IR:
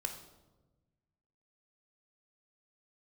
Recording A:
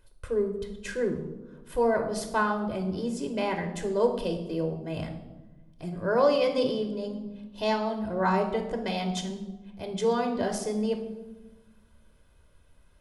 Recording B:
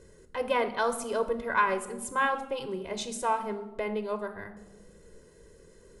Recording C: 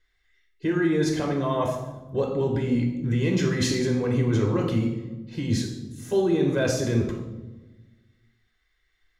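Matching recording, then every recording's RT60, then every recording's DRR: A; 1.2, 1.2, 1.1 s; 4.0, 8.5, 0.0 dB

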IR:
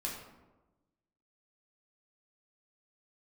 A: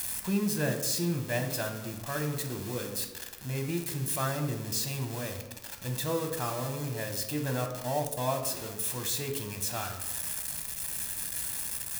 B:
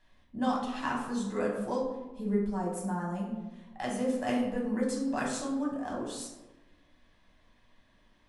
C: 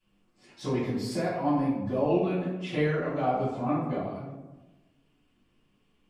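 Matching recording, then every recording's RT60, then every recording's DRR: B; 1.1, 1.1, 1.1 s; 4.0, -3.0, -12.0 dB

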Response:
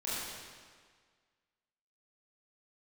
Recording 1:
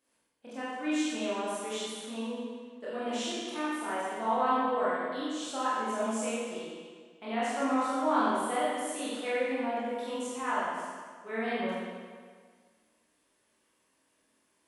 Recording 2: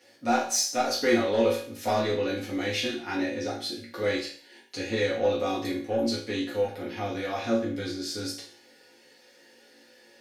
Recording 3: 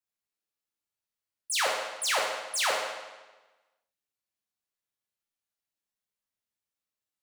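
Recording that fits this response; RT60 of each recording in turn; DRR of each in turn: 1; 1.7, 0.50, 1.2 s; -10.0, -7.5, -2.0 dB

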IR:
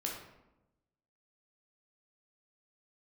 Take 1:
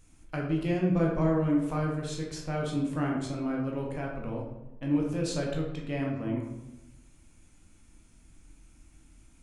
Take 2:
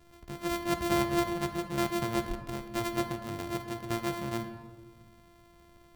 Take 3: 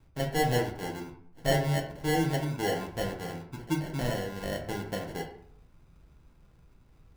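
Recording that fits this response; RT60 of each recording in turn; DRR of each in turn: 1; 0.95, 1.6, 0.65 s; -2.0, 6.5, 0.0 dB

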